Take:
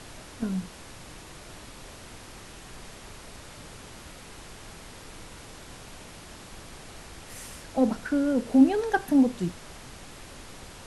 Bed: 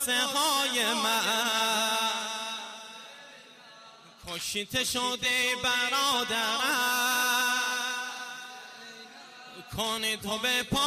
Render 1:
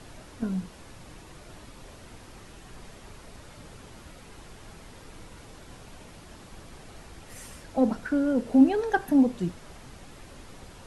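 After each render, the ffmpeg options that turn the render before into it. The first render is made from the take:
ffmpeg -i in.wav -af "afftdn=noise_reduction=6:noise_floor=-46" out.wav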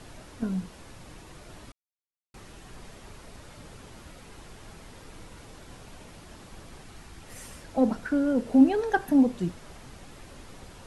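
ffmpeg -i in.wav -filter_complex "[0:a]asettb=1/sr,asplit=3[link_01][link_02][link_03];[link_01]atrim=end=6.824[link_04];[link_02]atrim=start=6.82:end=7.24,asetpts=PTS-STARTPTS,afade=type=in:duration=0.004:curve=qsin,afade=type=out:start_time=0.416:duration=0.004:curve=qsin,equalizer=frequency=550:width=2.2:gain=-7.5[link_05];[link_03]atrim=start=7.236[link_06];[link_04][link_05]acrossfade=duration=0.004:curve1=hsin:curve2=qsin[link_07];[link_07][link_06]acrossfade=duration=0.004:curve1=qsin:curve2=hsin,asplit=3[link_08][link_09][link_10];[link_08]atrim=end=1.72,asetpts=PTS-STARTPTS,afade=type=out:start_time=1.716:duration=0.004:curve=hsin[link_11];[link_09]atrim=start=1.72:end=2.34,asetpts=PTS-STARTPTS,volume=0[link_12];[link_10]atrim=start=2.34,asetpts=PTS-STARTPTS,afade=type=in:duration=0.004:curve=hsin[link_13];[link_11][link_12][link_13]concat=n=3:v=0:a=1" out.wav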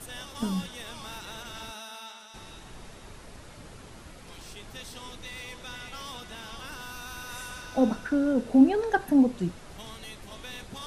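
ffmpeg -i in.wav -i bed.wav -filter_complex "[1:a]volume=-15dB[link_01];[0:a][link_01]amix=inputs=2:normalize=0" out.wav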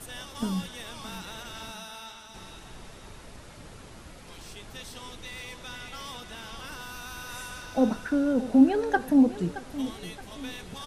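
ffmpeg -i in.wav -af "aecho=1:1:622|1244|1866|2488:0.188|0.0753|0.0301|0.0121" out.wav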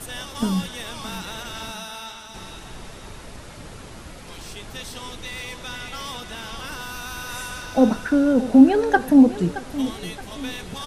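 ffmpeg -i in.wav -af "volume=7dB,alimiter=limit=-2dB:level=0:latency=1" out.wav

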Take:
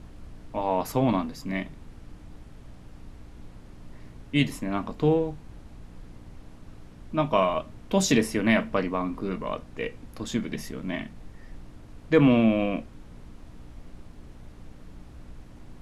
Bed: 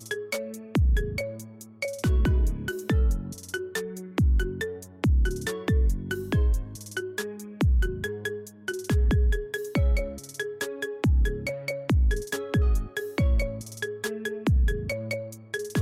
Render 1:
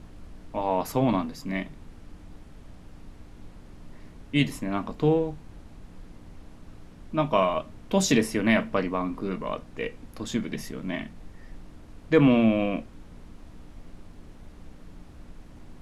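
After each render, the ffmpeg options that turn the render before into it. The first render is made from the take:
ffmpeg -i in.wav -af "bandreject=frequency=60:width_type=h:width=4,bandreject=frequency=120:width_type=h:width=4" out.wav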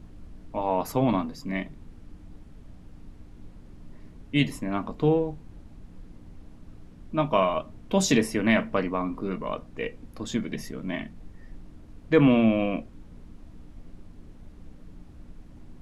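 ffmpeg -i in.wav -af "afftdn=noise_reduction=6:noise_floor=-48" out.wav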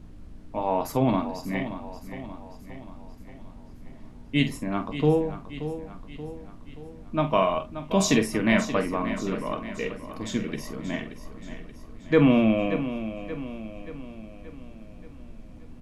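ffmpeg -i in.wav -filter_complex "[0:a]asplit=2[link_01][link_02];[link_02]adelay=46,volume=-10.5dB[link_03];[link_01][link_03]amix=inputs=2:normalize=0,aecho=1:1:579|1158|1737|2316|2895|3474:0.266|0.141|0.0747|0.0396|0.021|0.0111" out.wav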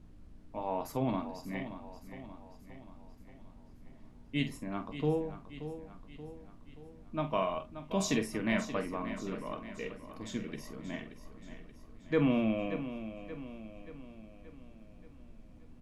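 ffmpeg -i in.wav -af "volume=-9.5dB" out.wav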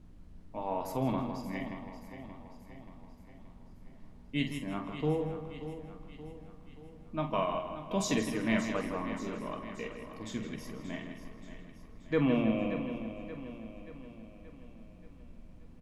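ffmpeg -i in.wav -filter_complex "[0:a]asplit=2[link_01][link_02];[link_02]adelay=45,volume=-12.5dB[link_03];[link_01][link_03]amix=inputs=2:normalize=0,asplit=2[link_04][link_05];[link_05]adelay=161,lowpass=frequency=4500:poles=1,volume=-8dB,asplit=2[link_06][link_07];[link_07]adelay=161,lowpass=frequency=4500:poles=1,volume=0.49,asplit=2[link_08][link_09];[link_09]adelay=161,lowpass=frequency=4500:poles=1,volume=0.49,asplit=2[link_10][link_11];[link_11]adelay=161,lowpass=frequency=4500:poles=1,volume=0.49,asplit=2[link_12][link_13];[link_13]adelay=161,lowpass=frequency=4500:poles=1,volume=0.49,asplit=2[link_14][link_15];[link_15]adelay=161,lowpass=frequency=4500:poles=1,volume=0.49[link_16];[link_04][link_06][link_08][link_10][link_12][link_14][link_16]amix=inputs=7:normalize=0" out.wav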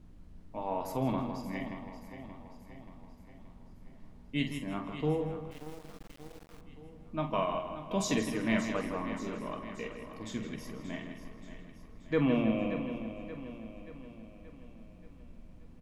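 ffmpeg -i in.wav -filter_complex "[0:a]asettb=1/sr,asplit=3[link_01][link_02][link_03];[link_01]atrim=end=5.514[link_04];[link_02]atrim=start=5.51:end=6.61,asetpts=PTS-STARTPTS,afade=type=in:duration=0.004:curve=qsin,afade=type=out:start_time=1.096:duration=0.004:curve=qsin,acrusher=bits=6:dc=4:mix=0:aa=0.000001[link_05];[link_03]atrim=start=6.606[link_06];[link_04][link_05]acrossfade=duration=0.004:curve1=hsin:curve2=qsin[link_07];[link_07][link_06]acrossfade=duration=0.004:curve1=qsin:curve2=hsin" out.wav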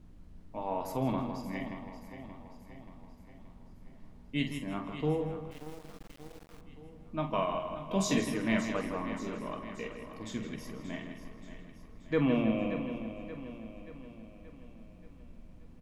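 ffmpeg -i in.wav -filter_complex "[0:a]asettb=1/sr,asplit=3[link_01][link_02][link_03];[link_01]atrim=end=7.594[link_04];[link_02]atrim=start=7.59:end=8.34,asetpts=PTS-STARTPTS,afade=type=in:duration=0.004:curve=qsin,afade=type=out:start_time=0.746:duration=0.004:curve=qsin,asplit=2[link_05][link_06];[link_06]adelay=21,volume=-6dB[link_07];[link_05][link_07]amix=inputs=2:normalize=0,atrim=end_sample=33075[link_08];[link_03]atrim=start=8.336[link_09];[link_04][link_08]acrossfade=duration=0.004:curve1=hsin:curve2=qsin[link_10];[link_10][link_09]acrossfade=duration=0.004:curve1=qsin:curve2=hsin" out.wav

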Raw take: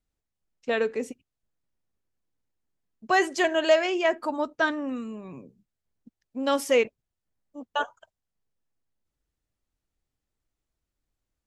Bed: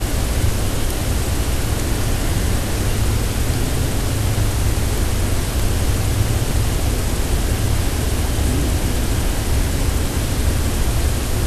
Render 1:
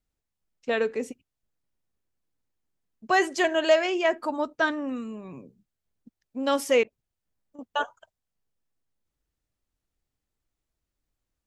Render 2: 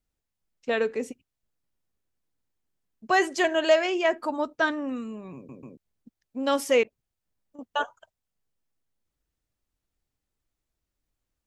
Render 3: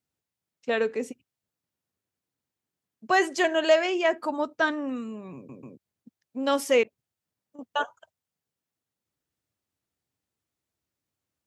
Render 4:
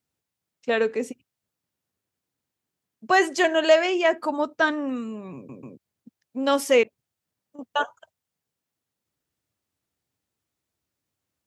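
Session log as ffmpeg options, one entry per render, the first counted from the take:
ffmpeg -i in.wav -filter_complex "[0:a]asettb=1/sr,asplit=3[link_01][link_02][link_03];[link_01]atrim=end=6.834[link_04];[link_02]atrim=start=6.83:end=7.59,asetpts=PTS-STARTPTS,afade=type=in:duration=0.004:curve=qsin,afade=type=out:start_time=0.756:duration=0.004:curve=qsin,acompressor=threshold=-47dB:ratio=6:attack=3.2:release=140:knee=1:detection=peak[link_05];[link_03]atrim=start=7.586[link_06];[link_04][link_05]acrossfade=duration=0.004:curve1=hsin:curve2=qsin[link_07];[link_07][link_06]acrossfade=duration=0.004:curve1=qsin:curve2=hsin" out.wav
ffmpeg -i in.wav -filter_complex "[0:a]asplit=4[link_01][link_02][link_03][link_04];[link_01]atrim=end=5.492[link_05];[link_02]atrim=start=5.348:end=5.492[link_06];[link_03]atrim=start=5.348:end=5.492[link_07];[link_04]atrim=start=5.768[link_08];[link_05][link_06]acrossfade=duration=0.004:curve1=hsin:curve2=hsin[link_09];[link_09][link_07]acrossfade=duration=0.004:curve1=hsin:curve2=hsin[link_10];[link_10][link_08]acrossfade=duration=0.004:curve1=hsin:curve2=hsin" out.wav
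ffmpeg -i in.wav -af "highpass=frequency=85:width=0.5412,highpass=frequency=85:width=1.3066" out.wav
ffmpeg -i in.wav -af "volume=3dB" out.wav

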